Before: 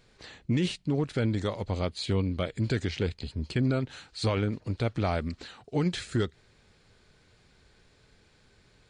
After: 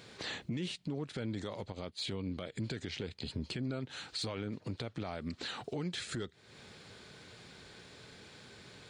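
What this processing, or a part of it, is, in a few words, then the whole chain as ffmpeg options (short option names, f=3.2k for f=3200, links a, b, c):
broadcast voice chain: -filter_complex "[0:a]highpass=120,deesser=0.8,acompressor=threshold=-44dB:ratio=5,equalizer=f=3.5k:t=o:w=0.39:g=3,alimiter=level_in=13.5dB:limit=-24dB:level=0:latency=1:release=35,volume=-13.5dB,asettb=1/sr,asplit=3[a][b][c];[a]atrim=end=1.724[d];[b]atrim=start=1.72:end=2.52,asetpts=PTS-STARTPTS,afade=t=in:d=0.004:c=qsin,afade=t=out:st=0.796:d=0.004:c=qsin,agate=range=-8dB:threshold=-51dB:ratio=16:detection=peak[e];[c]atrim=start=2.516[f];[d][e]acrossfade=d=0.004:c1=hsin:c2=qsin[g];[g][f]acrossfade=d=0.004:c1=qsin:c2=hsin,volume=9dB"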